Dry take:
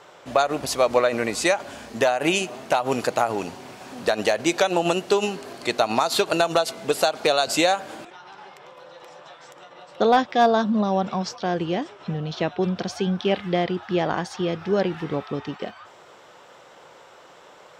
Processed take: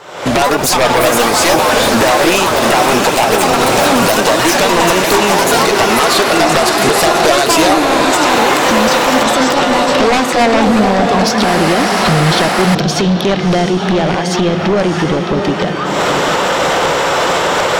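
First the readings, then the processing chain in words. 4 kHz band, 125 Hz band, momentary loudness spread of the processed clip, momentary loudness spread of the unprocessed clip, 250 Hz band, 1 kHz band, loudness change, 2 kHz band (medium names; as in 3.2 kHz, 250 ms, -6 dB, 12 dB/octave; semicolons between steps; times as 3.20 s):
+15.0 dB, +14.0 dB, 4 LU, 11 LU, +13.5 dB, +14.0 dB, +12.0 dB, +15.5 dB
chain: recorder AGC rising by 63 dB/s; echo that smears into a reverb 681 ms, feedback 47%, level -7 dB; sine folder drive 15 dB, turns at -0.5 dBFS; ever faster or slower copies 167 ms, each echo +6 st, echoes 2; trim -7.5 dB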